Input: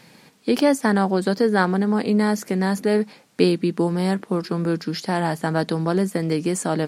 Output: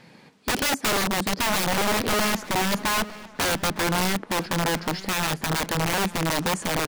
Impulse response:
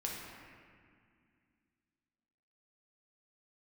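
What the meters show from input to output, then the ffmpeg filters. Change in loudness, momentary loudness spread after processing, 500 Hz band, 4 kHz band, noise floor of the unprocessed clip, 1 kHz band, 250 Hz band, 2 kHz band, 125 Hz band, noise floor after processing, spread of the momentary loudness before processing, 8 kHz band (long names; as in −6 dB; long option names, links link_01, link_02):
−2.5 dB, 4 LU, −7.0 dB, +7.0 dB, −52 dBFS, +1.0 dB, −8.5 dB, +3.5 dB, −5.0 dB, −51 dBFS, 5 LU, +7.0 dB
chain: -filter_complex "[0:a]aemphasis=mode=reproduction:type=50kf,aeval=exprs='(mod(7.94*val(0)+1,2)-1)/7.94':channel_layout=same,asplit=2[link_01][link_02];[link_02]adelay=908,lowpass=frequency=4100:poles=1,volume=-17dB,asplit=2[link_03][link_04];[link_04]adelay=908,lowpass=frequency=4100:poles=1,volume=0.47,asplit=2[link_05][link_06];[link_06]adelay=908,lowpass=frequency=4100:poles=1,volume=0.47,asplit=2[link_07][link_08];[link_08]adelay=908,lowpass=frequency=4100:poles=1,volume=0.47[link_09];[link_01][link_03][link_05][link_07][link_09]amix=inputs=5:normalize=0"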